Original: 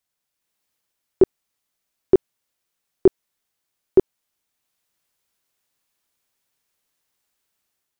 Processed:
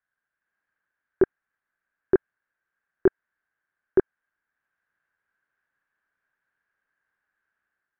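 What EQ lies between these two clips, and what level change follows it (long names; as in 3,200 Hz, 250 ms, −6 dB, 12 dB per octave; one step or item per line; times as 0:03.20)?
low-pass with resonance 1,600 Hz, resonance Q 10
−6.0 dB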